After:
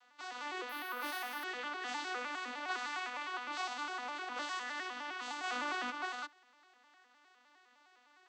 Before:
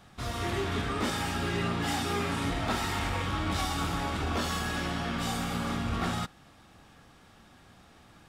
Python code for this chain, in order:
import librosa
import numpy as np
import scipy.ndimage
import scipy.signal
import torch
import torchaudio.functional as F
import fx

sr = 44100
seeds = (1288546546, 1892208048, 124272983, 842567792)

y = fx.vocoder_arp(x, sr, chord='minor triad', root=59, every_ms=102)
y = scipy.signal.sosfilt(scipy.signal.butter(2, 1100.0, 'highpass', fs=sr, output='sos'), y)
y = fx.resample_bad(y, sr, factor=3, down='filtered', up='hold', at=(0.69, 1.44))
y = fx.env_flatten(y, sr, amount_pct=70, at=(5.43, 5.9), fade=0.02)
y = y * librosa.db_to_amplitude(1.5)